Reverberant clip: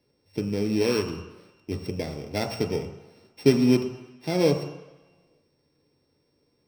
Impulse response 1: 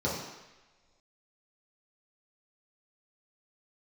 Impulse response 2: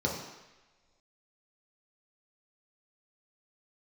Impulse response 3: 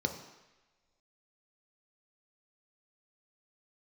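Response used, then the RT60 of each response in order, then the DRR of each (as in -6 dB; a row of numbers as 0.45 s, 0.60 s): 3; no single decay rate, no single decay rate, no single decay rate; -7.5 dB, -3.0 dB, 4.5 dB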